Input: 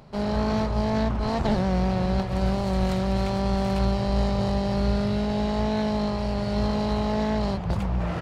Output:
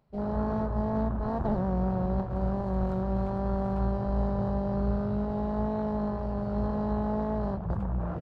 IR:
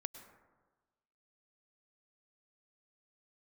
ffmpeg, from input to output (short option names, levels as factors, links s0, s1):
-filter_complex "[0:a]afwtdn=0.0282,asplit=2[s0][s1];[1:a]atrim=start_sample=2205,lowpass=3700[s2];[s1][s2]afir=irnorm=-1:irlink=0,volume=0.668[s3];[s0][s3]amix=inputs=2:normalize=0,aresample=32000,aresample=44100,volume=0.398"